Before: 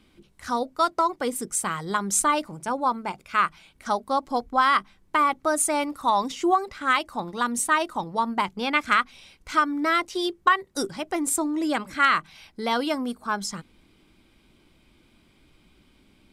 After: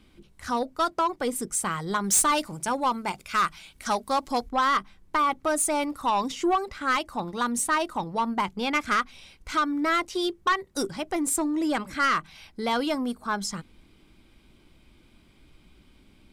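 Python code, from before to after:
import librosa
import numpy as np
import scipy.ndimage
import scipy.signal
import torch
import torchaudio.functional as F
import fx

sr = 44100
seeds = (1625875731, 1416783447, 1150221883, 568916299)

y = fx.high_shelf(x, sr, hz=2400.0, db=9.5, at=(2.04, 4.49))
y = 10.0 ** (-17.0 / 20.0) * np.tanh(y / 10.0 ** (-17.0 / 20.0))
y = fx.low_shelf(y, sr, hz=90.0, db=6.5)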